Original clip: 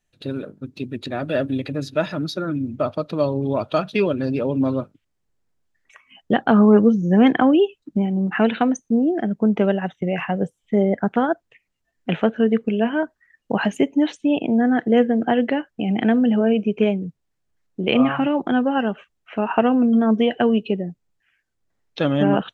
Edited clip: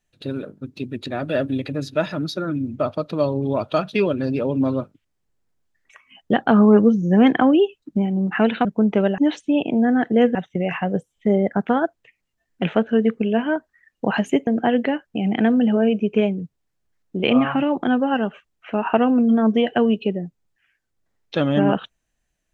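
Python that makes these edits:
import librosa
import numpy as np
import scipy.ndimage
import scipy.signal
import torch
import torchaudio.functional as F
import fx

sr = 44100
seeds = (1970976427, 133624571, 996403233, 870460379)

y = fx.edit(x, sr, fx.cut(start_s=8.65, length_s=0.64),
    fx.move(start_s=13.94, length_s=1.17, to_s=9.82), tone=tone)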